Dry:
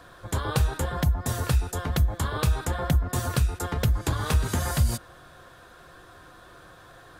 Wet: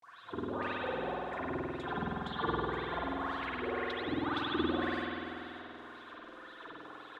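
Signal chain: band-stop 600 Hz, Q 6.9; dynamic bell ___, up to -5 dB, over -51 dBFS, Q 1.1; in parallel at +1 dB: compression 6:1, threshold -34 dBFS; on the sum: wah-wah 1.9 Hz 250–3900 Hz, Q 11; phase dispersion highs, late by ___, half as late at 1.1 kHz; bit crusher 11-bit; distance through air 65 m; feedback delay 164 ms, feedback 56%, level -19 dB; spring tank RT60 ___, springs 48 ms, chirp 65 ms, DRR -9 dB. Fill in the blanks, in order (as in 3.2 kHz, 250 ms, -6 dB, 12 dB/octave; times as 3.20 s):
6.2 kHz, 72 ms, 2.7 s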